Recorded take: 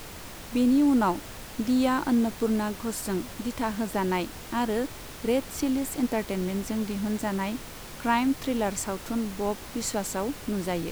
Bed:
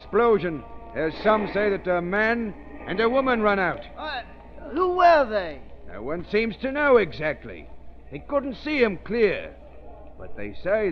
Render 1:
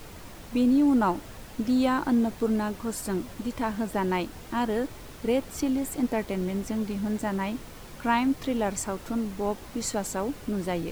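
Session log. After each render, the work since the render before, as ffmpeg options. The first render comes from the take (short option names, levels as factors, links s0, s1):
-af "afftdn=nr=6:nf=-42"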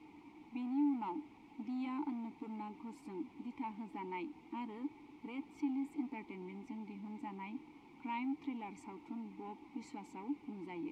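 -filter_complex "[0:a]acrossover=split=1300[s0][s1];[s0]asoftclip=type=tanh:threshold=0.0355[s2];[s2][s1]amix=inputs=2:normalize=0,asplit=3[s3][s4][s5];[s3]bandpass=f=300:t=q:w=8,volume=1[s6];[s4]bandpass=f=870:t=q:w=8,volume=0.501[s7];[s5]bandpass=f=2240:t=q:w=8,volume=0.355[s8];[s6][s7][s8]amix=inputs=3:normalize=0"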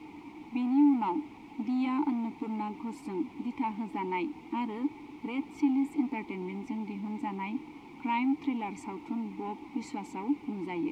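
-af "volume=3.35"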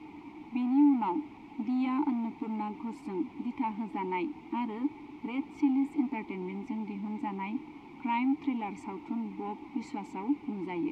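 -af "highshelf=f=5500:g=-9.5,bandreject=f=480:w=12"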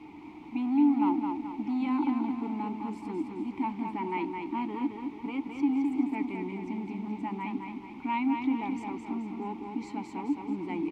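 -af "aecho=1:1:215|430|645|860|1075|1290:0.562|0.253|0.114|0.0512|0.0231|0.0104"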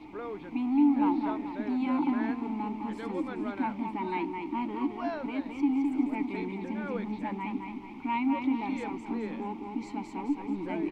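-filter_complex "[1:a]volume=0.1[s0];[0:a][s0]amix=inputs=2:normalize=0"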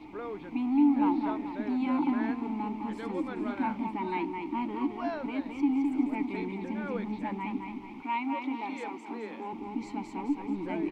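-filter_complex "[0:a]asettb=1/sr,asplit=3[s0][s1][s2];[s0]atrim=end=3.334[s3];[s1]atrim=start=3.33:end=3.87,asetpts=PTS-STARTPTS,afade=t=in:d=0.004:c=qsin,afade=t=out:st=0.536:d=0.004:c=qsin,asplit=2[s4][s5];[s5]adelay=37,volume=0.422[s6];[s4][s6]amix=inputs=2:normalize=0,atrim=end_sample=23814[s7];[s2]atrim=start=3.866[s8];[s3][s7]acrossfade=d=0.004:c1=hsin:c2=qsin[s9];[s9][s8]acrossfade=d=0.004:c1=qsin:c2=hsin,asettb=1/sr,asplit=3[s10][s11][s12];[s10]atrim=end=8.024[s13];[s11]atrim=start=8.02:end=9.53,asetpts=PTS-STARTPTS,afade=t=in:d=0.004:c=qsin,afade=t=out:st=1.506:d=0.004:c=qsin,highpass=350[s14];[s12]atrim=start=9.526[s15];[s13][s14]acrossfade=d=0.004:c1=hsin:c2=qsin[s16];[s16][s15]acrossfade=d=0.004:c1=qsin:c2=hsin"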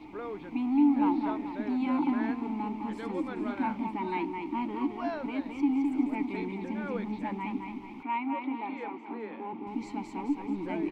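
-filter_complex "[0:a]asettb=1/sr,asplit=3[s0][s1][s2];[s0]atrim=end=8.034[s3];[s1]atrim=start=8.03:end=9.67,asetpts=PTS-STARTPTS,afade=t=in:d=0.004:c=qsin,afade=t=out:st=1.636:d=0.004:c=qsin,highpass=110,lowpass=2600[s4];[s2]atrim=start=9.666[s5];[s3][s4]acrossfade=d=0.004:c1=hsin:c2=qsin[s6];[s6][s5]acrossfade=d=0.004:c1=qsin:c2=hsin"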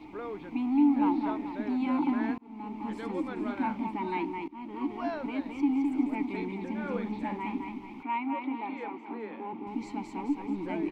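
-filter_complex "[0:a]asettb=1/sr,asplit=3[s0][s1][s2];[s0]atrim=end=6.744[s3];[s1]atrim=start=6.74:end=7.69,asetpts=PTS-STARTPTS,afade=t=in:d=0.004:c=qsin,afade=t=out:st=0.946:d=0.004:c=qsin,asplit=2[s4][s5];[s5]adelay=49,volume=0.422[s6];[s4][s6]amix=inputs=2:normalize=0,atrim=end_sample=41895[s7];[s2]atrim=start=7.686[s8];[s3][s7]acrossfade=d=0.004:c1=hsin:c2=qsin[s9];[s9][s8]acrossfade=d=0.004:c1=qsin:c2=hsin,asplit=3[s10][s11][s12];[s10]atrim=end=2.38,asetpts=PTS-STARTPTS,afade=t=out:st=2.376:d=0.004:c=hsin[s13];[s11]atrim=start=2.38:end=4.48,asetpts=PTS-STARTPTS,afade=t=in:d=0.52,afade=t=out:st=2.096:d=0.004:c=hsin:silence=0.0891251[s14];[s12]atrim=start=4.48,asetpts=PTS-STARTPTS,afade=t=in:d=0.47:silence=0.0891251[s15];[s13][s14][s15]concat=n=3:v=0:a=1"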